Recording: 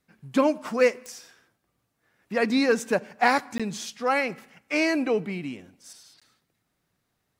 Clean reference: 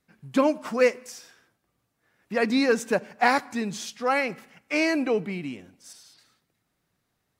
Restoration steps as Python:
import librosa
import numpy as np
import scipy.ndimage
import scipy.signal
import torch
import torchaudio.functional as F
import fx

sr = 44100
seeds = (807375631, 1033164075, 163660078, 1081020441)

y = fx.fix_declick_ar(x, sr, threshold=10.0)
y = fx.fix_interpolate(y, sr, at_s=(3.58, 6.2), length_ms=16.0)